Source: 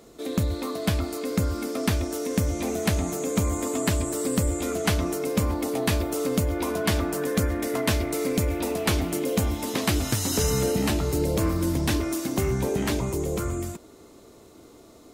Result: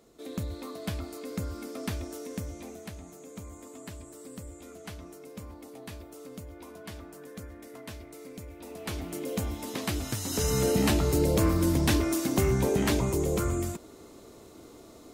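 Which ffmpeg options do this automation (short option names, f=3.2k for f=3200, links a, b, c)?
-af "volume=9.5dB,afade=t=out:st=2.09:d=0.83:silence=0.334965,afade=t=in:st=8.57:d=0.75:silence=0.266073,afade=t=in:st=10.26:d=0.54:silence=0.421697"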